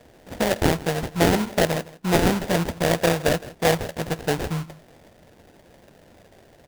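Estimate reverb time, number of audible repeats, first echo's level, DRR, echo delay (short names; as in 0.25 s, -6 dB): none, 1, -19.5 dB, none, 0.163 s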